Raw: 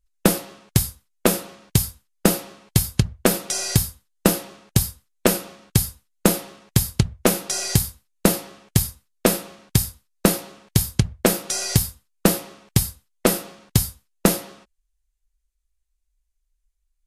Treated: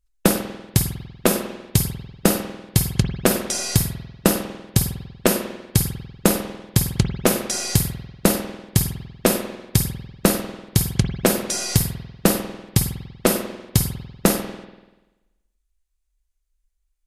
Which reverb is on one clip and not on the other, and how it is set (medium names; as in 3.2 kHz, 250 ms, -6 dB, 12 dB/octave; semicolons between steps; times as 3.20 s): spring tank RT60 1.1 s, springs 48 ms, chirp 40 ms, DRR 6 dB